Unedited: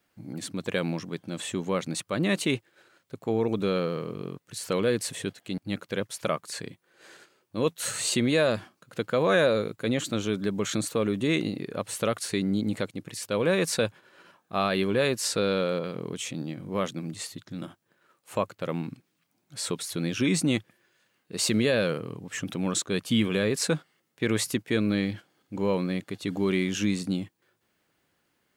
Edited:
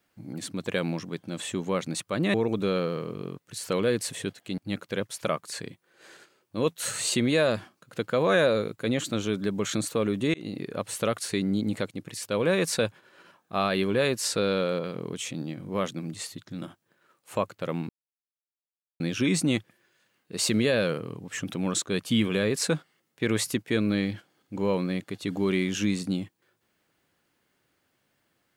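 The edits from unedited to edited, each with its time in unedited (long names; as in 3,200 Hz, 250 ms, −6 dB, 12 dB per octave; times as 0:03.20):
0:02.34–0:03.34: remove
0:11.34–0:11.59: fade in
0:18.89–0:20.00: silence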